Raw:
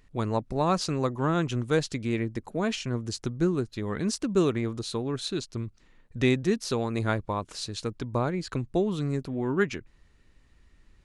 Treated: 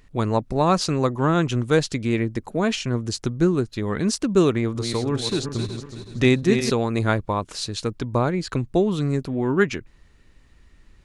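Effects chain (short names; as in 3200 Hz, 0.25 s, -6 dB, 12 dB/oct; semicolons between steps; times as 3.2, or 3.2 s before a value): 4.56–6.7 regenerating reverse delay 0.186 s, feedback 59%, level -7 dB; gain +6 dB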